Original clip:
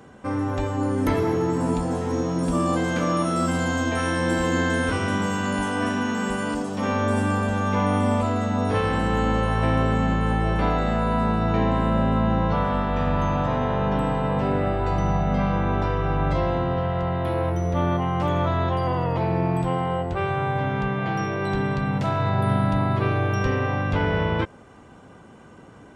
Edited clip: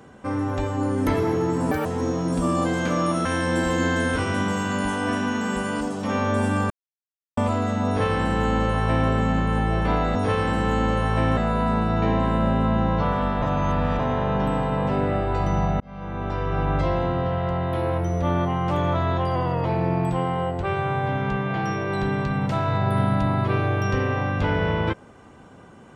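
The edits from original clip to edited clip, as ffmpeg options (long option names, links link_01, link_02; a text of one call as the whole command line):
ffmpeg -i in.wav -filter_complex "[0:a]asplit=11[link_01][link_02][link_03][link_04][link_05][link_06][link_07][link_08][link_09][link_10][link_11];[link_01]atrim=end=1.714[link_12];[link_02]atrim=start=1.71:end=1.96,asetpts=PTS-STARTPTS,asetrate=77616,aresample=44100,atrim=end_sample=6264,asetpts=PTS-STARTPTS[link_13];[link_03]atrim=start=1.956:end=3.362[link_14];[link_04]atrim=start=3.988:end=7.44,asetpts=PTS-STARTPTS,afade=type=out:start_time=3.448:duration=0.004:curve=hsin[link_15];[link_05]atrim=start=7.44:end=8.11,asetpts=PTS-STARTPTS,volume=0[link_16];[link_06]atrim=start=8.11:end=10.892,asetpts=PTS-STARTPTS,afade=type=in:duration=0.004:curve=hsin[link_17];[link_07]atrim=start=8.608:end=9.832[link_18];[link_08]atrim=start=10.888:end=12.942[link_19];[link_09]atrim=start=12.938:end=13.512,asetpts=PTS-STARTPTS,areverse[link_20];[link_10]atrim=start=13.508:end=15.32,asetpts=PTS-STARTPTS,afade=type=out:start_time=1.808:duration=0.004:curve=hsin[link_21];[link_11]atrim=start=15.32,asetpts=PTS-STARTPTS,afade=type=in:duration=0.8[link_22];[link_12][link_13]acrossfade=duration=0.004:curve1=hsin:curve2=hsin[link_23];[link_23][link_14]acrossfade=duration=0.004:curve1=hsin:curve2=hsin[link_24];[link_15][link_16][link_17]concat=n=3:v=0:a=1[link_25];[link_24][link_25]acrossfade=duration=0.004:curve1=hsin:curve2=hsin[link_26];[link_26][link_18]acrossfade=duration=0.004:curve1=hsin:curve2=hsin[link_27];[link_27][link_19]acrossfade=duration=0.004:curve1=hsin:curve2=hsin[link_28];[link_28][link_20]acrossfade=duration=0.004:curve1=hsin:curve2=hsin[link_29];[link_21][link_22]concat=n=2:v=0:a=1[link_30];[link_29][link_30]acrossfade=duration=0.004:curve1=hsin:curve2=hsin" out.wav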